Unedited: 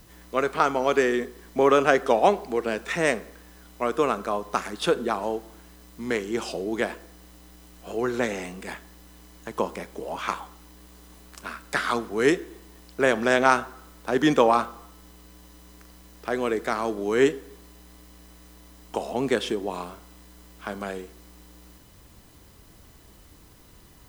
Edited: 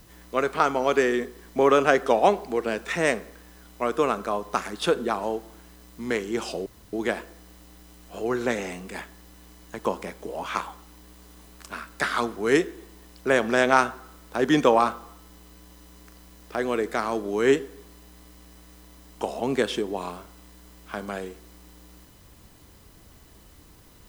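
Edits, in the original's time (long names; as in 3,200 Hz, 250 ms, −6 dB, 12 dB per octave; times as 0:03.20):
0:06.66: splice in room tone 0.27 s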